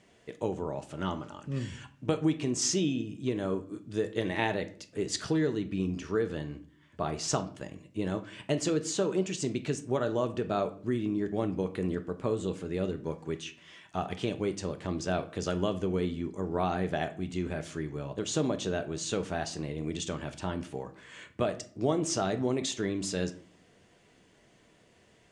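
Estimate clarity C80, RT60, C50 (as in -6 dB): 19.5 dB, 0.50 s, 15.0 dB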